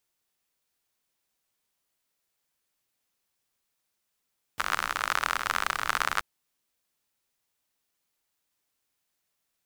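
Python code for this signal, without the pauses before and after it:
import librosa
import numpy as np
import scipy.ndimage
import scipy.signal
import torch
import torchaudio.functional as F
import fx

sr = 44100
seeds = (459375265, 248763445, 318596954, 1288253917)

y = fx.rain(sr, seeds[0], length_s=1.63, drops_per_s=55.0, hz=1300.0, bed_db=-17)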